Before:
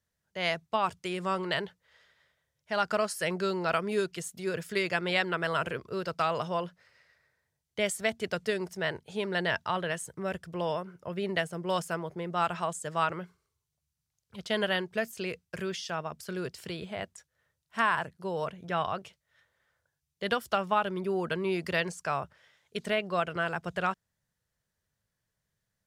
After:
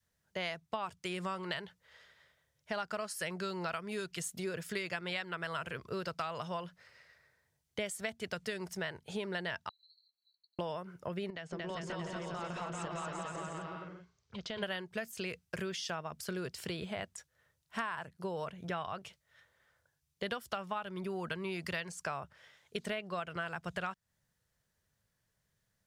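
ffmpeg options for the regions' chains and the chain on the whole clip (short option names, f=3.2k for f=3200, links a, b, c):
-filter_complex "[0:a]asettb=1/sr,asplit=3[a][b][c];[a]atrim=end=9.694[d];[b]atrim=start=9.69:end=10.59,asetpts=PTS-STARTPTS,afade=t=in:d=0.004:c=qsin,afade=t=out:st=0.896:d=0.004:c=qsin,acompressor=threshold=-38dB:ratio=2:attack=3.2:release=140:knee=1:detection=peak,asuperpass=centerf=4200:order=20:qfactor=7.4[e];[c]atrim=start=10.586[f];[d][e]acrossfade=d=0.004:c1=hsin:c2=qsin[g];[g][f]acrossfade=d=0.004:c1=qsin:c2=hsin,asettb=1/sr,asplit=3[h][i][j];[h]atrim=end=11.304[k];[i]atrim=start=11.3:end=14.63,asetpts=PTS-STARTPTS,afade=t=in:d=0.004:c=qsin,afade=t=out:st=3.326:d=0.004:c=qsin,lowpass=f=6.2k:w=0.5412,lowpass=f=6.2k:w=1.3066,acompressor=threshold=-41dB:ratio=4:attack=3.2:release=140:knee=1:detection=peak,aecho=1:1:230|402.5|531.9|628.9|701.7|756.3|797.2:0.794|0.631|0.501|0.398|0.316|0.251|0.2,atrim=end_sample=146853[l];[j]atrim=start=14.626[m];[k][l]acrossfade=d=0.004:c1=hsin:c2=qsin[n];[n][m]acrossfade=d=0.004:c1=qsin:c2=hsin,adynamicequalizer=threshold=0.00631:dfrequency=390:dqfactor=0.73:tfrequency=390:tqfactor=0.73:attack=5:release=100:ratio=0.375:range=3.5:mode=cutabove:tftype=bell,acompressor=threshold=-38dB:ratio=5,volume=2.5dB"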